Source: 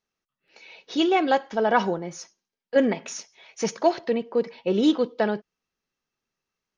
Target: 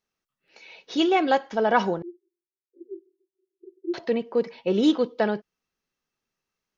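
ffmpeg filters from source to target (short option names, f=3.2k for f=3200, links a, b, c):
-filter_complex "[0:a]asettb=1/sr,asplit=3[a][b][c];[a]atrim=end=2.024[d];[b]atrim=start=2.02:end=3.94,asetpts=PTS-STARTPTS,afade=t=in:d=0.004:c=qsin,afade=t=out:st=1.916:d=0.004:c=qsin,asuperpass=centerf=360:order=8:qfactor=6.2[e];[c]atrim=start=3.936[f];[d][e]acrossfade=d=0.004:c1=hsin:c2=qsin[g];[g][f]acrossfade=d=0.004:c1=qsin:c2=hsin"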